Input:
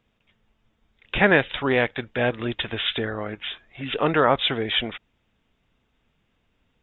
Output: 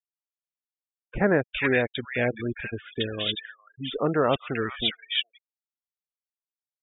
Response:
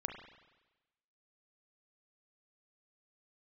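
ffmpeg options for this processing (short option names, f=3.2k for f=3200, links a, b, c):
-filter_complex "[0:a]afftfilt=real='re*gte(hypot(re,im),0.0708)':imag='im*gte(hypot(re,im),0.0708)':win_size=1024:overlap=0.75,equalizer=f=890:w=2.2:g=-6,acrossover=split=1600[a][b];[b]adelay=410[c];[a][c]amix=inputs=2:normalize=0,volume=-1.5dB"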